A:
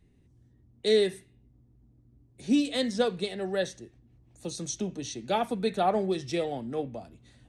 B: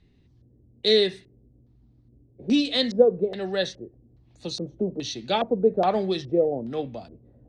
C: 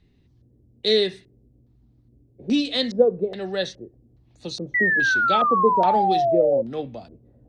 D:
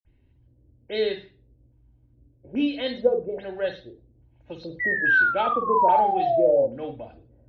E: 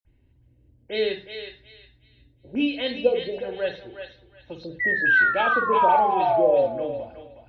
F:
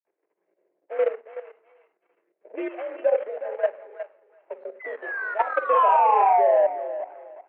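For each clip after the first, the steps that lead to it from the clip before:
LFO low-pass square 1.2 Hz 510–4300 Hz; gain +2.5 dB
painted sound fall, 4.74–6.62, 530–2000 Hz -20 dBFS
reverb, pre-delay 49 ms
dynamic EQ 2600 Hz, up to +6 dB, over -44 dBFS, Q 2.6; on a send: thinning echo 0.364 s, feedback 27%, high-pass 960 Hz, level -6 dB
median filter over 25 samples; level quantiser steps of 12 dB; mistuned SSB +61 Hz 400–2200 Hz; gain +7 dB

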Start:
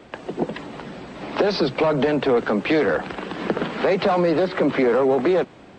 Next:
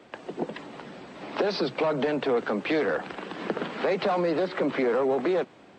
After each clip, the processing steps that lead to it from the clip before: HPF 190 Hz 6 dB/oct; gain -5.5 dB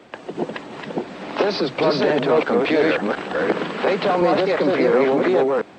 reverse delay 0.351 s, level -0.5 dB; gain +5.5 dB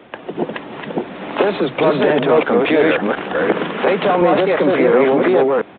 downsampling 8000 Hz; gain +4 dB

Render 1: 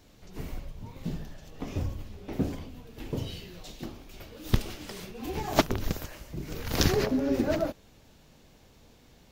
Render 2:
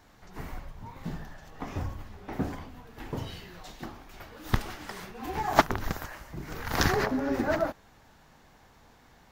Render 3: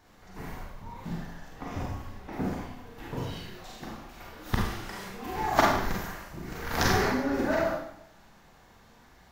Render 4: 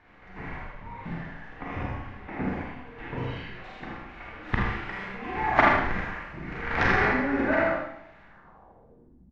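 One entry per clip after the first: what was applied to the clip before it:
band shelf 1200 Hz +9.5 dB; gain -2.5 dB
Schroeder reverb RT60 0.7 s, combs from 32 ms, DRR -2.5 dB; gain -3 dB
low-pass sweep 2200 Hz -> 190 Hz, 8.22–9.29; echo 79 ms -5 dB; core saturation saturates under 120 Hz

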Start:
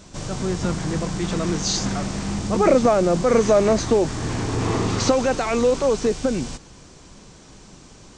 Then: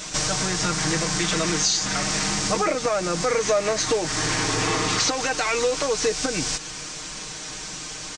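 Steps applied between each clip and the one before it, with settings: EQ curve 170 Hz 0 dB, 910 Hz +8 dB, 1900 Hz +15 dB; compressor 6:1, threshold -22 dBFS, peak gain reduction 16 dB; comb 6.5 ms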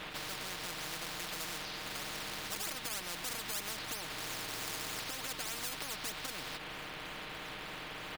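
Gaussian blur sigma 3.6 samples; in parallel at -11.5 dB: decimation with a swept rate 16×, swing 100% 3.2 Hz; on the sum: spectral compressor 10:1; gain -9 dB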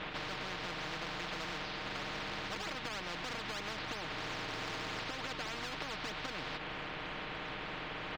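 air absorption 190 m; gain +4 dB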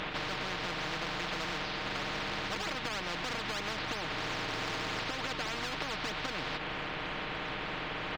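upward compressor, threshold -46 dBFS; gain +4.5 dB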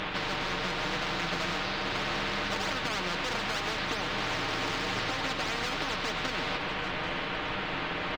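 flange 1.2 Hz, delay 9.7 ms, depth 2.2 ms, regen +62%; echo 0.788 s -13.5 dB; on a send at -6.5 dB: reverb RT60 1.4 s, pre-delay 86 ms; on the sum: gain +7.5 dB

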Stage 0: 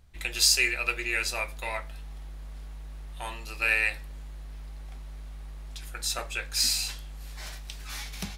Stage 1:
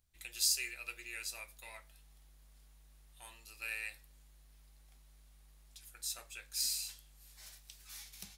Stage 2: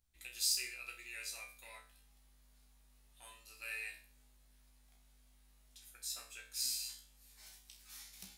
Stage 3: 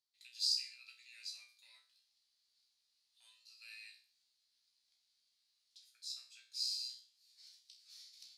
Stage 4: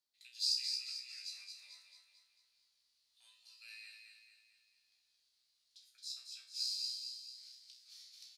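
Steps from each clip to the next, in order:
pre-emphasis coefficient 0.8; gain -7.5 dB
resonator 63 Hz, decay 0.4 s, harmonics all, mix 90%; gain +5.5 dB
band-pass 4500 Hz, Q 4.7; gain +5 dB
feedback echo 0.222 s, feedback 49%, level -5.5 dB

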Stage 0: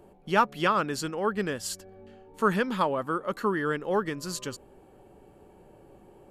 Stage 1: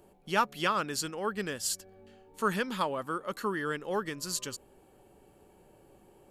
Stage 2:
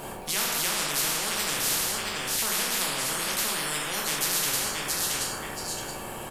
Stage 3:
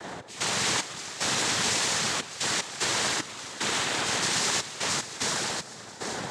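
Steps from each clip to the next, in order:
high shelf 2700 Hz +10 dB; gain -6 dB
feedback echo 0.674 s, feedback 17%, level -13 dB; plate-style reverb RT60 0.71 s, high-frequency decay 0.65×, DRR -3.5 dB; spectral compressor 10:1
non-linear reverb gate 0.46 s flat, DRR -1 dB; step gate "x.xx..xxxxx." 75 bpm -12 dB; noise vocoder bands 6

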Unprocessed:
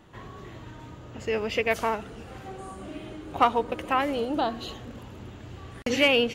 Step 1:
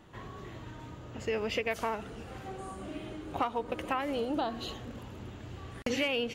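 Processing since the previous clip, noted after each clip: compressor 5:1, threshold -26 dBFS, peak gain reduction 10.5 dB; gain -2 dB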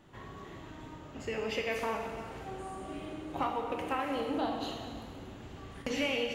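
plate-style reverb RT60 1.9 s, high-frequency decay 0.8×, DRR 0.5 dB; gain -3.5 dB

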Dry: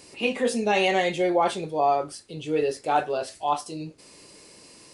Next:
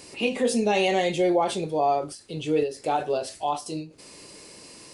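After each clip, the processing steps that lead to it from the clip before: in parallel at -2 dB: limiter -19 dBFS, peak gain reduction 8 dB; on the sum: dynamic EQ 1500 Hz, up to -7 dB, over -35 dBFS, Q 0.92; ending taper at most 160 dB/s; gain -1.5 dB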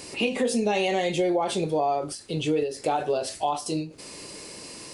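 compressor 4:1, threshold -27 dBFS, peak gain reduction 8.5 dB; gain +5 dB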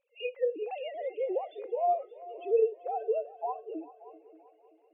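sine-wave speech; multi-head echo 0.193 s, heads second and third, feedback 54%, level -12.5 dB; spectral expander 1.5:1; gain -4.5 dB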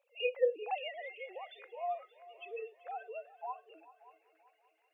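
high-pass sweep 700 Hz -> 1600 Hz, 0.39–1.15; gain +3 dB

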